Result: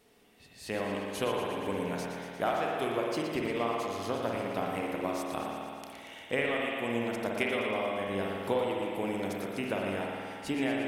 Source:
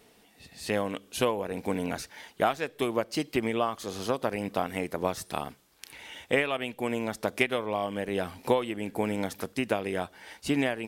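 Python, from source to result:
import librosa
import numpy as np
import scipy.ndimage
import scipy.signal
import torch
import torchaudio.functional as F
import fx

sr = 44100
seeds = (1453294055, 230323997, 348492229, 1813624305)

y = fx.echo_thinned(x, sr, ms=117, feedback_pct=71, hz=480.0, wet_db=-8.5)
y = fx.rev_spring(y, sr, rt60_s=2.2, pass_ms=(51,), chirp_ms=75, drr_db=-1.5)
y = y * 10.0 ** (-6.5 / 20.0)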